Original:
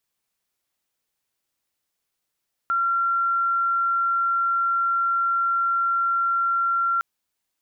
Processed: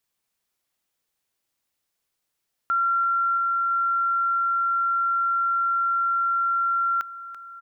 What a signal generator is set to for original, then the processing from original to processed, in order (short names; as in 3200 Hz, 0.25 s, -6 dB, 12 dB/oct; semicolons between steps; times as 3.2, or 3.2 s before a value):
tone sine 1370 Hz -19 dBFS 4.31 s
feedback echo 0.336 s, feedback 59%, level -12.5 dB